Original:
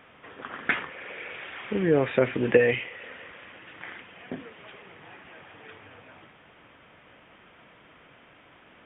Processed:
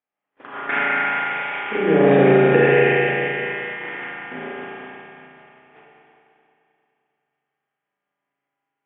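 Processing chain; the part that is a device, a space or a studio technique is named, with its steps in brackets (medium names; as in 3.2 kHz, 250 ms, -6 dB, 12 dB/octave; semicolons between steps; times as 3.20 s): combo amplifier with spring reverb and tremolo (spring tank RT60 2.8 s, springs 36 ms, chirp 45 ms, DRR -4.5 dB; tremolo 5.2 Hz, depth 36%; cabinet simulation 90–3400 Hz, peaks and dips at 110 Hz -6 dB, 180 Hz -9 dB, 330 Hz +3 dB, 810 Hz +7 dB); gate -38 dBFS, range -40 dB; spring tank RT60 2.8 s, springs 31/43 ms, chirp 25 ms, DRR -5.5 dB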